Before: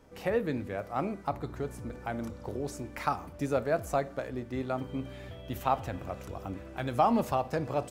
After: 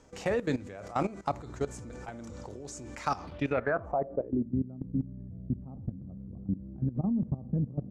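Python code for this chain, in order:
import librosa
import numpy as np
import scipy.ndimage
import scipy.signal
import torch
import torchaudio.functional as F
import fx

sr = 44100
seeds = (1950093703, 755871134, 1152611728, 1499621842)

y = fx.filter_sweep_lowpass(x, sr, from_hz=7100.0, to_hz=200.0, start_s=3.07, end_s=4.53, q=3.4)
y = fx.level_steps(y, sr, step_db=16)
y = y * librosa.db_to_amplitude(5.0)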